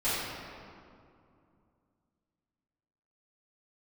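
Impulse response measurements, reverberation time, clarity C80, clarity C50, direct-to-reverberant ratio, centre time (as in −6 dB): 2.5 s, −1.0 dB, −3.5 dB, −14.5 dB, 143 ms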